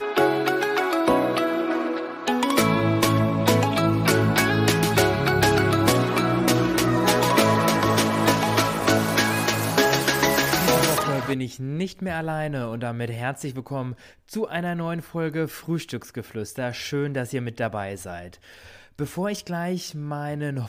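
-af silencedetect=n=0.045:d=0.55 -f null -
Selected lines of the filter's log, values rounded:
silence_start: 18.18
silence_end: 19.00 | silence_duration: 0.82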